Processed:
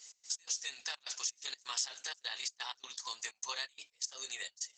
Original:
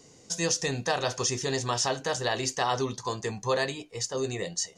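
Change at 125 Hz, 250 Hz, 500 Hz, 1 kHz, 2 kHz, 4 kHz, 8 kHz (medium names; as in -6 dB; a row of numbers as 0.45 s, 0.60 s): under -40 dB, under -35 dB, -29.5 dB, -17.5 dB, -10.5 dB, -6.0 dB, -7.0 dB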